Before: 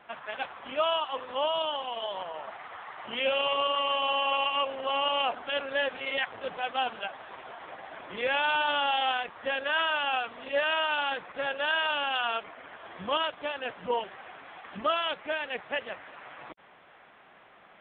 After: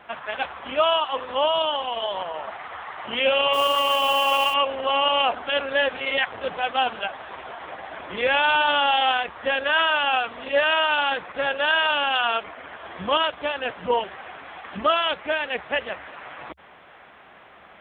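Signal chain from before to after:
parametric band 69 Hz +13 dB 0.29 octaves
0:03.53–0:04.54: noise that follows the level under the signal 20 dB
level +7 dB

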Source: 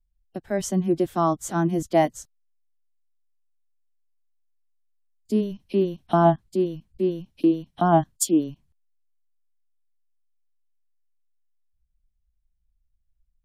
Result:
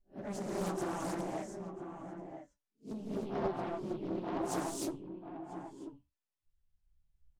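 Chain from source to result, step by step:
peak hold with a rise ahead of every peak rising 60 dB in 0.33 s
low-pass filter 11,000 Hz 12 dB per octave
high-shelf EQ 2,600 Hz −7 dB
notch filter 490 Hz, Q 12
downward compressor 10 to 1, threshold −29 dBFS, peak gain reduction 17 dB
time stretch by phase vocoder 0.55×
tuned comb filter 290 Hz, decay 0.22 s, harmonics all, mix 60%
soft clipping −39 dBFS, distortion −14 dB
double-tracking delay 15 ms −7.5 dB
slap from a distant wall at 170 metres, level −8 dB
reverb whose tail is shaped and stops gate 340 ms rising, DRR −5 dB
highs frequency-modulated by the lows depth 0.64 ms
level +3.5 dB

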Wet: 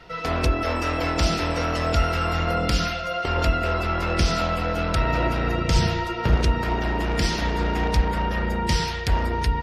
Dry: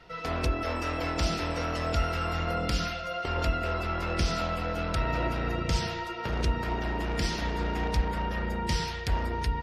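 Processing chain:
0:05.76–0:06.36: low-shelf EQ 230 Hz +9 dB
level +6.5 dB

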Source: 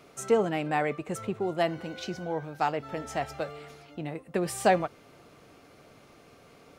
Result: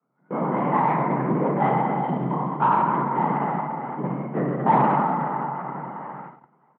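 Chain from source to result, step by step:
peak hold with a decay on every bin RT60 2.78 s
low-pass filter 1,400 Hz 24 dB per octave
comb filter 1 ms, depth 86%
on a send: echo with a time of its own for lows and highs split 790 Hz, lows 354 ms, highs 647 ms, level −15 dB
on the sum: automatic gain control gain up to 9 dB
in parallel at −12 dB: hard clipping −12.5 dBFS, distortion −12 dB
on the sum: low-shelf EQ 160 Hz +4 dB
linear-prediction vocoder at 8 kHz whisper
frequency shifter +130 Hz
noise gate −29 dBFS, range −19 dB
high-pass filter 120 Hz
every ending faded ahead of time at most 550 dB per second
level −7.5 dB

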